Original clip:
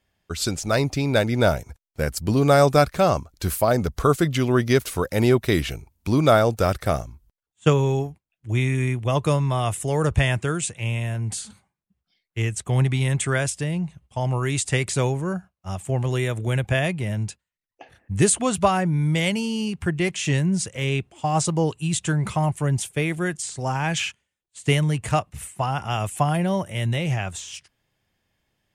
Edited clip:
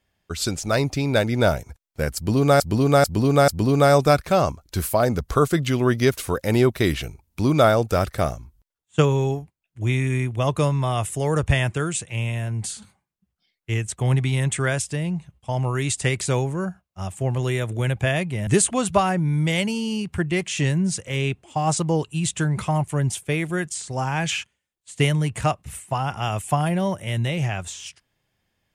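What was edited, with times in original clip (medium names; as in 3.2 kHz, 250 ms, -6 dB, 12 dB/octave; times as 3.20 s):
2.16–2.60 s: loop, 4 plays
17.15–18.15 s: delete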